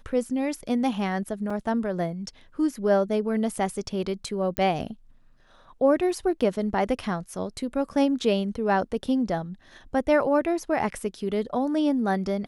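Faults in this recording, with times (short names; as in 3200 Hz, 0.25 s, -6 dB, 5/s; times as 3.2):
1.5 gap 4.2 ms
4.57 pop -11 dBFS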